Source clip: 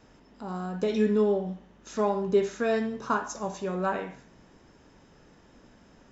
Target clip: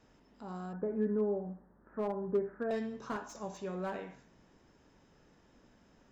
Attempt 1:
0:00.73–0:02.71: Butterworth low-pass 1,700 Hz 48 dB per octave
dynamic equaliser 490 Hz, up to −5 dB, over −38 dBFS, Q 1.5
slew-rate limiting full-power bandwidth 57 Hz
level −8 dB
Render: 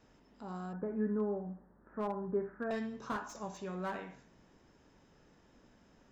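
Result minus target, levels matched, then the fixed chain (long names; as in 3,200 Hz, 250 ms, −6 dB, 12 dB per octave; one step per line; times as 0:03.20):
1,000 Hz band +3.0 dB
0:00.73–0:02.71: Butterworth low-pass 1,700 Hz 48 dB per octave
dynamic equaliser 1,200 Hz, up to −5 dB, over −38 dBFS, Q 1.5
slew-rate limiting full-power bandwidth 57 Hz
level −8 dB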